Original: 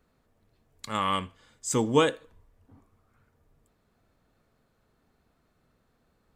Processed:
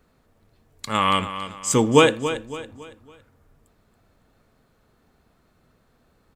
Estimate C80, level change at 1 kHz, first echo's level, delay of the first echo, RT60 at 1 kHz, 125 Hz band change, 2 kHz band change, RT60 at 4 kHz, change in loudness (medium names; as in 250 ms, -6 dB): no reverb, +7.5 dB, -11.5 dB, 279 ms, no reverb, +7.5 dB, +9.5 dB, no reverb, +6.5 dB